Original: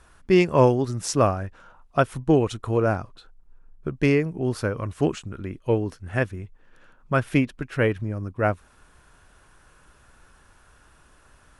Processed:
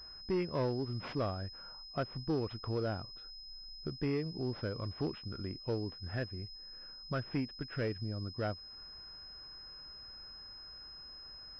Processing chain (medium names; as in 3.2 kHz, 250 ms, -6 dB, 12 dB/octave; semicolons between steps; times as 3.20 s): dynamic bell 1 kHz, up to -3 dB, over -37 dBFS, Q 0.88; compression 1.5:1, threshold -34 dBFS, peak gain reduction 8 dB; saturation -20.5 dBFS, distortion -16 dB; class-D stage that switches slowly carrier 5.1 kHz; trim -5.5 dB